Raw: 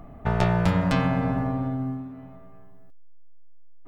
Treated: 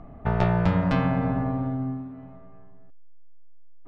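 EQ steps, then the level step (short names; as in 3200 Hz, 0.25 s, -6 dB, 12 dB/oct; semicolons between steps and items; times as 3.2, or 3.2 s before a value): LPF 5600 Hz 12 dB/oct; high shelf 3200 Hz -8.5 dB; 0.0 dB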